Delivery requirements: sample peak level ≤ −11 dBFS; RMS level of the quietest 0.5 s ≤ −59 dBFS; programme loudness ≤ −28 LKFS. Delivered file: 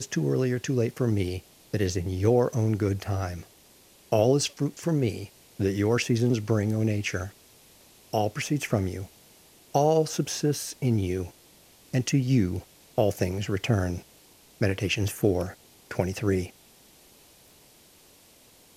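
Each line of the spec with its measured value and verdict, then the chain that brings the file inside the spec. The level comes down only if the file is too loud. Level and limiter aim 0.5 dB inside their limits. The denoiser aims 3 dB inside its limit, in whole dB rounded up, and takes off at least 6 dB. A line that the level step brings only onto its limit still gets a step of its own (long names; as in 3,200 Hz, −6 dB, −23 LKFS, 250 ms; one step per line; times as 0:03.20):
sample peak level −9.0 dBFS: out of spec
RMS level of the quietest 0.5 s −56 dBFS: out of spec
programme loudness −27.0 LKFS: out of spec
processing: broadband denoise 6 dB, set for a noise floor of −56 dBFS
level −1.5 dB
brickwall limiter −11.5 dBFS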